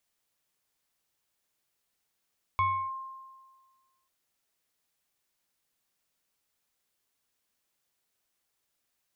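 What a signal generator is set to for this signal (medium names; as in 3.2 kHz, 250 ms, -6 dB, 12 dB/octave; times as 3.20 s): FM tone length 1.49 s, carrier 1.06 kHz, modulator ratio 1.09, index 0.64, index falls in 0.32 s linear, decay 1.57 s, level -21.5 dB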